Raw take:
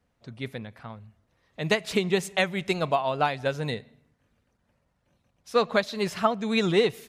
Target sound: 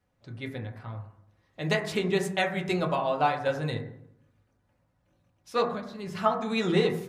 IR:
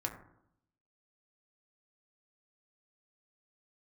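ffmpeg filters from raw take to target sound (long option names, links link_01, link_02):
-filter_complex "[0:a]asettb=1/sr,asplit=3[link_01][link_02][link_03];[link_01]atrim=end=5.674[link_04];[link_02]atrim=start=5.67:end=6.15,asetpts=PTS-STARTPTS,afade=type=in:duration=0.004:curve=qsin,afade=type=out:start_time=0.476:duration=0.004:curve=qsin,acrossover=split=250[link_05][link_06];[link_06]acompressor=threshold=-37dB:ratio=5[link_07];[link_05][link_07]amix=inputs=2:normalize=0[link_08];[link_03]atrim=start=6.146[link_09];[link_04][link_08]acrossfade=duration=0.004:curve1=hsin:curve2=qsin[link_10];[link_10][link_09]acrossfade=duration=0.004:curve1=qsin:curve2=hsin[link_11];[1:a]atrim=start_sample=2205[link_12];[link_11][link_12]afir=irnorm=-1:irlink=0,volume=-3dB"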